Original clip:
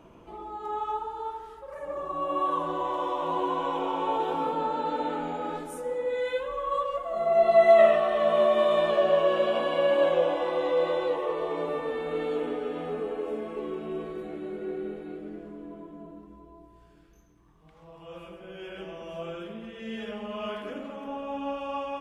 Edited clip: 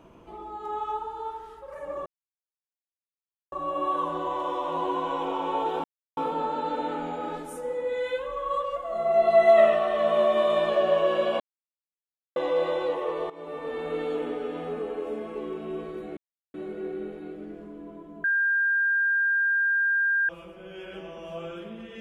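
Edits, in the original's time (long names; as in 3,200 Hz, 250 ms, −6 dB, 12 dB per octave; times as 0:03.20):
0:02.06: splice in silence 1.46 s
0:04.38: splice in silence 0.33 s
0:09.61–0:10.57: silence
0:11.51–0:12.02: fade in, from −17.5 dB
0:14.38: splice in silence 0.37 s
0:16.08–0:18.13: beep over 1,600 Hz −20.5 dBFS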